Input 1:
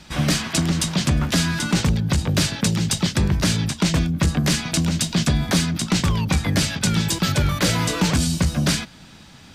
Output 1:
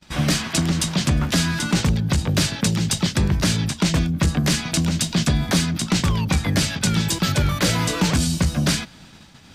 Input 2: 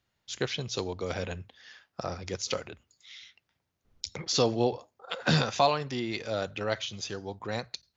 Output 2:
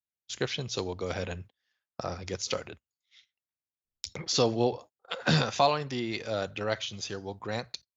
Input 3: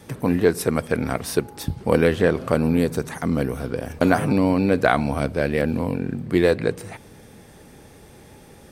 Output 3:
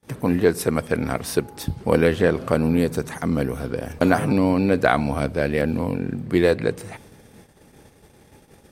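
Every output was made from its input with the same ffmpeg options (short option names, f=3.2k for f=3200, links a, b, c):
-af "agate=range=-28dB:threshold=-45dB:ratio=16:detection=peak"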